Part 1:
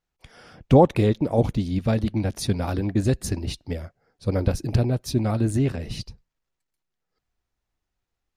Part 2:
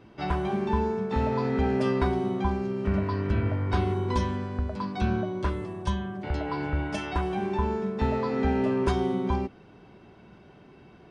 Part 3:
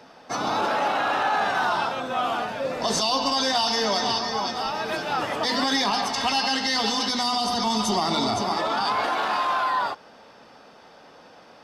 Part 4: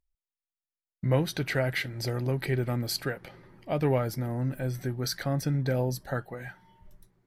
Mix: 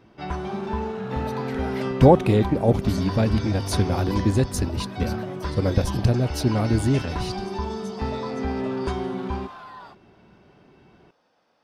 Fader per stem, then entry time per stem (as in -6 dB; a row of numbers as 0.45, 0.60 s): +1.0, -2.0, -18.0, -11.5 dB; 1.30, 0.00, 0.00, 0.00 s